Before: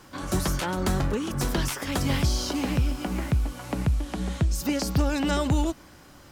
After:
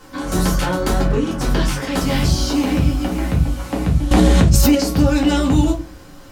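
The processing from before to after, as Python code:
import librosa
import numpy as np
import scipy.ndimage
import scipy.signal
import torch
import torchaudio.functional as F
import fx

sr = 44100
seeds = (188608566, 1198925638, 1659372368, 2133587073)

y = fx.high_shelf(x, sr, hz=fx.line((1.03, 6600.0), (1.96, 11000.0)), db=-9.5, at=(1.03, 1.96), fade=0.02)
y = fx.room_shoebox(y, sr, seeds[0], volume_m3=130.0, walls='furnished', distance_m=2.1)
y = fx.env_flatten(y, sr, amount_pct=100, at=(4.11, 4.75))
y = F.gain(torch.from_numpy(y), 2.5).numpy()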